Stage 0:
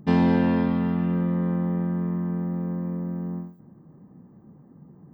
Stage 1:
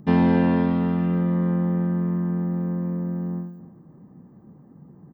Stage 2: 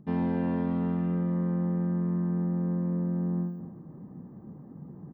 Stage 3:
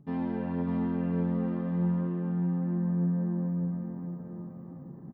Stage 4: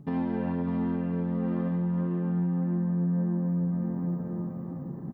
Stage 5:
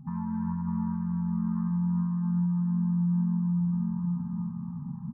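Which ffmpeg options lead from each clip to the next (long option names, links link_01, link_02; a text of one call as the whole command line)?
ffmpeg -i in.wav -filter_complex "[0:a]acrossover=split=3600[link_01][link_02];[link_02]acompressor=threshold=-58dB:ratio=4:attack=1:release=60[link_03];[link_01][link_03]amix=inputs=2:normalize=0,asplit=2[link_04][link_05];[link_05]adelay=279.9,volume=-15dB,highshelf=frequency=4000:gain=-6.3[link_06];[link_04][link_06]amix=inputs=2:normalize=0,volume=1.5dB" out.wav
ffmpeg -i in.wav -af "highshelf=frequency=2200:gain=-9.5,areverse,acompressor=threshold=-29dB:ratio=6,areverse,volume=3dB" out.wav
ffmpeg -i in.wav -filter_complex "[0:a]flanger=delay=7.2:depth=8.7:regen=31:speed=0.41:shape=sinusoidal,asplit=2[link_01][link_02];[link_02]aecho=0:1:600|1050|1388|1641|1830:0.631|0.398|0.251|0.158|0.1[link_03];[link_01][link_03]amix=inputs=2:normalize=0" out.wav
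ffmpeg -i in.wav -af "alimiter=level_in=5dB:limit=-24dB:level=0:latency=1:release=254,volume=-5dB,volume=7.5dB" out.wav
ffmpeg -i in.wav -af "lowpass=frequency=1200:width=0.5412,lowpass=frequency=1200:width=1.3066,afftfilt=real='re*(1-between(b*sr/4096,250,800))':imag='im*(1-between(b*sr/4096,250,800))':win_size=4096:overlap=0.75,volume=1dB" out.wav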